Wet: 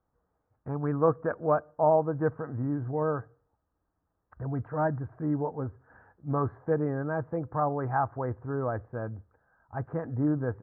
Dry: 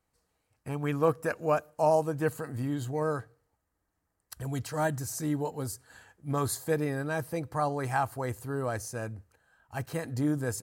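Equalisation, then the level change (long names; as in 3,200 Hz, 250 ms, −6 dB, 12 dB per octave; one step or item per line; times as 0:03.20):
Butterworth low-pass 1,500 Hz 36 dB per octave
+1.5 dB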